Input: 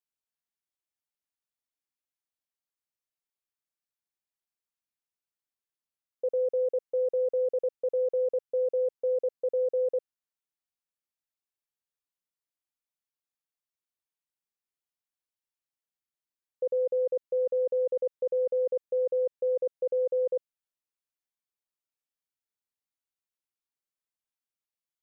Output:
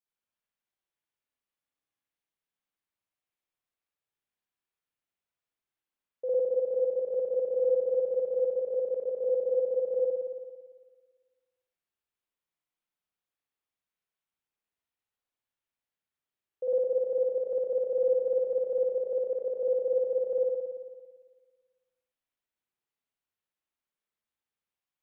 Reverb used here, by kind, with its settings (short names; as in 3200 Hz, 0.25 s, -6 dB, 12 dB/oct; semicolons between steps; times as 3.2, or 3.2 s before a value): spring tank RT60 1.5 s, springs 56 ms, chirp 55 ms, DRR -8.5 dB; gain -5 dB